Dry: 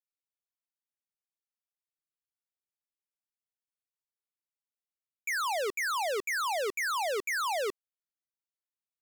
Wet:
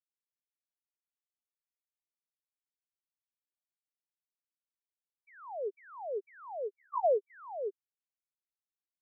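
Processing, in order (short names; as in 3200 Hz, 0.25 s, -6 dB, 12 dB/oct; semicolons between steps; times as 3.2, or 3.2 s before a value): 6.67–7.3 sine-wave speech; spectral expander 4:1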